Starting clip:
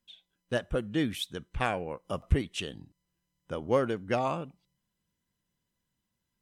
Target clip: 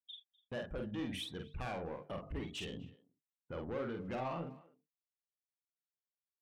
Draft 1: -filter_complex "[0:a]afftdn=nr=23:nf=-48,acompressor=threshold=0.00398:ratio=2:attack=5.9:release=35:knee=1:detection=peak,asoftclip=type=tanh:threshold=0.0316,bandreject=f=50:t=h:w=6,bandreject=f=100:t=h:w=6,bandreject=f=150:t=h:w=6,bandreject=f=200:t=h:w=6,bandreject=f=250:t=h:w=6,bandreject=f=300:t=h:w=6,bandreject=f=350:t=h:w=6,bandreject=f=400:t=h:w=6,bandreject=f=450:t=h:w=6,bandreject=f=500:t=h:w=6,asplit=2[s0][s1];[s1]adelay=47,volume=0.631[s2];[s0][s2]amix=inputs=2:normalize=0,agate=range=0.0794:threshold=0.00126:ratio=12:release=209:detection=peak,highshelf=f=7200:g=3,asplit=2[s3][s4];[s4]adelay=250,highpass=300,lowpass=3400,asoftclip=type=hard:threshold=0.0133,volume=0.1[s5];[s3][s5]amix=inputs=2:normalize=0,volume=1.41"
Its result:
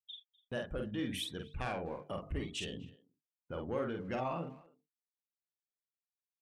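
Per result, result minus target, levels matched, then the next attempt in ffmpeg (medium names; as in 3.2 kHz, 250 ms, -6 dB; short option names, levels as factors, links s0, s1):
saturation: distortion -10 dB; 8 kHz band +3.5 dB
-filter_complex "[0:a]afftdn=nr=23:nf=-48,acompressor=threshold=0.00398:ratio=2:attack=5.9:release=35:knee=1:detection=peak,asoftclip=type=tanh:threshold=0.0119,bandreject=f=50:t=h:w=6,bandreject=f=100:t=h:w=6,bandreject=f=150:t=h:w=6,bandreject=f=200:t=h:w=6,bandreject=f=250:t=h:w=6,bandreject=f=300:t=h:w=6,bandreject=f=350:t=h:w=6,bandreject=f=400:t=h:w=6,bandreject=f=450:t=h:w=6,bandreject=f=500:t=h:w=6,asplit=2[s0][s1];[s1]adelay=47,volume=0.631[s2];[s0][s2]amix=inputs=2:normalize=0,agate=range=0.0794:threshold=0.00126:ratio=12:release=209:detection=peak,highshelf=f=7200:g=3,asplit=2[s3][s4];[s4]adelay=250,highpass=300,lowpass=3400,asoftclip=type=hard:threshold=0.0133,volume=0.1[s5];[s3][s5]amix=inputs=2:normalize=0,volume=1.41"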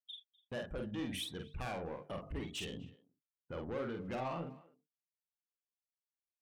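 8 kHz band +5.0 dB
-filter_complex "[0:a]afftdn=nr=23:nf=-48,acompressor=threshold=0.00398:ratio=2:attack=5.9:release=35:knee=1:detection=peak,asoftclip=type=tanh:threshold=0.0119,bandreject=f=50:t=h:w=6,bandreject=f=100:t=h:w=6,bandreject=f=150:t=h:w=6,bandreject=f=200:t=h:w=6,bandreject=f=250:t=h:w=6,bandreject=f=300:t=h:w=6,bandreject=f=350:t=h:w=6,bandreject=f=400:t=h:w=6,bandreject=f=450:t=h:w=6,bandreject=f=500:t=h:w=6,asplit=2[s0][s1];[s1]adelay=47,volume=0.631[s2];[s0][s2]amix=inputs=2:normalize=0,agate=range=0.0794:threshold=0.00126:ratio=12:release=209:detection=peak,highshelf=f=7200:g=-6.5,asplit=2[s3][s4];[s4]adelay=250,highpass=300,lowpass=3400,asoftclip=type=hard:threshold=0.0133,volume=0.1[s5];[s3][s5]amix=inputs=2:normalize=0,volume=1.41"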